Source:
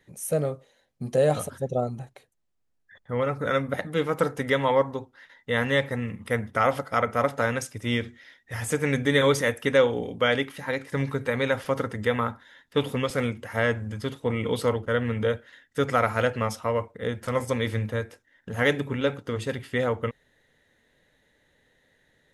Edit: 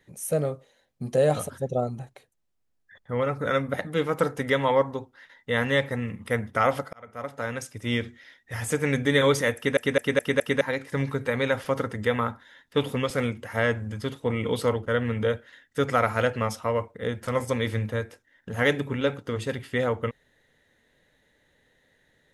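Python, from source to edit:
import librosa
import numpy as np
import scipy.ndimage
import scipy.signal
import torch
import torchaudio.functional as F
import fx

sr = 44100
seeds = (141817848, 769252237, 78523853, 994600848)

y = fx.edit(x, sr, fx.fade_in_span(start_s=6.93, length_s=1.06),
    fx.stutter_over(start_s=9.56, slice_s=0.21, count=5), tone=tone)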